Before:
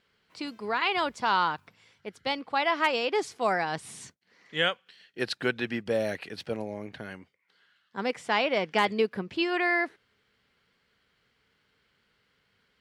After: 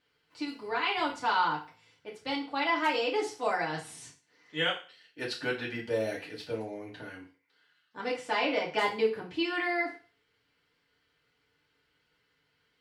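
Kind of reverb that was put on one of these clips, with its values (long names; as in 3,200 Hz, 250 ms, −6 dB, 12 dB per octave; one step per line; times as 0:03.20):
feedback delay network reverb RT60 0.37 s, low-frequency decay 0.85×, high-frequency decay 1×, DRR −4.5 dB
level −8.5 dB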